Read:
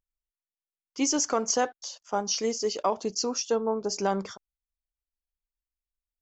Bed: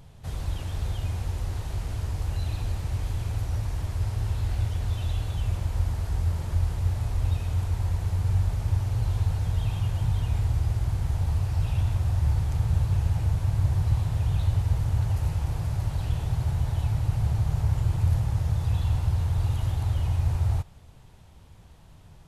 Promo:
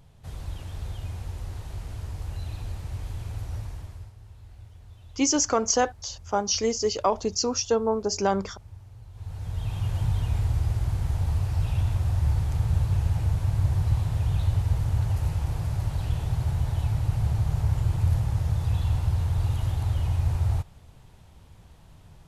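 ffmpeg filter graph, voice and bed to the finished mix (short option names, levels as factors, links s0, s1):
-filter_complex "[0:a]adelay=4200,volume=1.41[s0];[1:a]volume=5.62,afade=t=out:st=3.58:d=0.55:silence=0.177828,afade=t=in:st=9.13:d=0.83:silence=0.1[s1];[s0][s1]amix=inputs=2:normalize=0"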